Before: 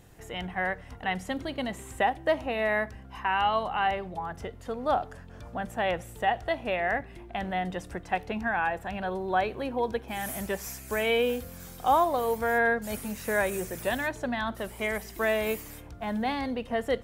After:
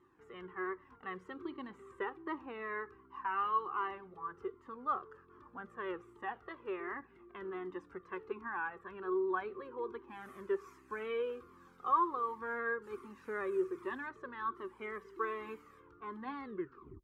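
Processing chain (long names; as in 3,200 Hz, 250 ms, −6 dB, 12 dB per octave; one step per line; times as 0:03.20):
turntable brake at the end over 0.60 s
pair of resonant band-passes 660 Hz, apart 1.6 octaves
flanger whose copies keep moving one way falling 1.3 Hz
level +6.5 dB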